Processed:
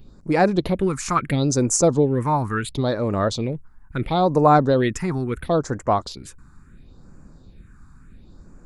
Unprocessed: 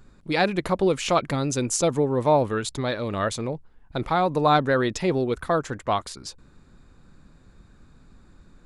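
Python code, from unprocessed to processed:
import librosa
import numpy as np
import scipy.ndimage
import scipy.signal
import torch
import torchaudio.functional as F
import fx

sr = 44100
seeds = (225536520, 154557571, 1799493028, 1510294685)

y = fx.phaser_stages(x, sr, stages=4, low_hz=500.0, high_hz=3500.0, hz=0.73, feedback_pct=25)
y = y * 10.0 ** (5.0 / 20.0)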